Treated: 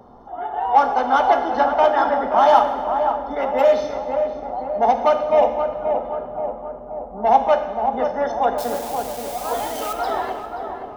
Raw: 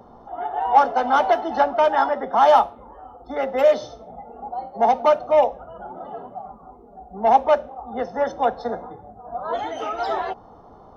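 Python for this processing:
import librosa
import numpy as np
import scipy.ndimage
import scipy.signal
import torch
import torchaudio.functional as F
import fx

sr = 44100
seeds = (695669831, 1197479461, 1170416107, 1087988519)

p1 = fx.crossing_spikes(x, sr, level_db=-22.5, at=(8.58, 9.93))
p2 = p1 + fx.echo_filtered(p1, sr, ms=529, feedback_pct=64, hz=1200.0, wet_db=-5.5, dry=0)
y = fx.rev_plate(p2, sr, seeds[0], rt60_s=1.6, hf_ratio=0.95, predelay_ms=0, drr_db=7.0)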